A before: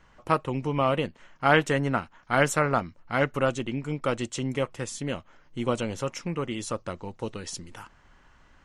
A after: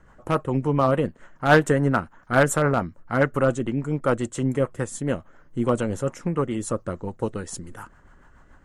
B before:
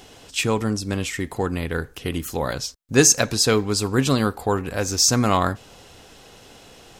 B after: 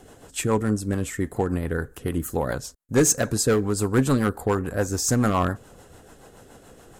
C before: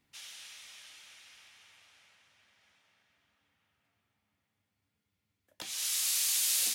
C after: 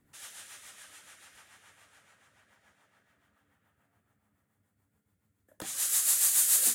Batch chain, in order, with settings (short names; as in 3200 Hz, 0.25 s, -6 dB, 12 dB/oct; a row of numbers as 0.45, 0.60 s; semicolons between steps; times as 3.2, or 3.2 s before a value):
band shelf 3600 Hz -11 dB; hard clip -14 dBFS; rotary speaker horn 7 Hz; match loudness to -24 LUFS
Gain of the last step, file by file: +7.0, +2.0, +9.5 dB